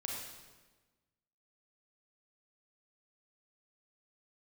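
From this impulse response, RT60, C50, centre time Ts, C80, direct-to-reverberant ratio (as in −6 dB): 1.3 s, 0.0 dB, 71 ms, 2.5 dB, −2.0 dB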